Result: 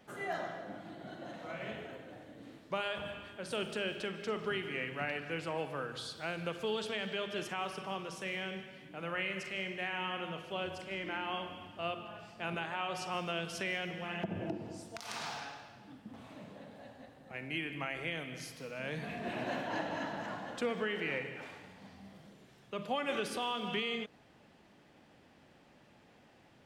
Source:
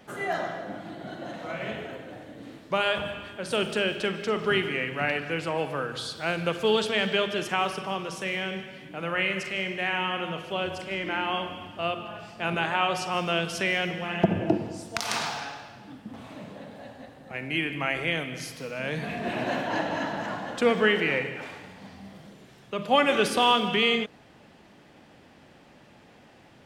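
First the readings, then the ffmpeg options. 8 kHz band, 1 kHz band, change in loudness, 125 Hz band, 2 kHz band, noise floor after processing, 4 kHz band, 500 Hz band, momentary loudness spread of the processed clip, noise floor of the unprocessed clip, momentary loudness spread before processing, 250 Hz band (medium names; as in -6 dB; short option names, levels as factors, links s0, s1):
-10.5 dB, -11.0 dB, -11.0 dB, -10.0 dB, -10.5 dB, -63 dBFS, -11.5 dB, -11.0 dB, 15 LU, -54 dBFS, 20 LU, -10.5 dB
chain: -af "alimiter=limit=0.15:level=0:latency=1:release=207,volume=0.376"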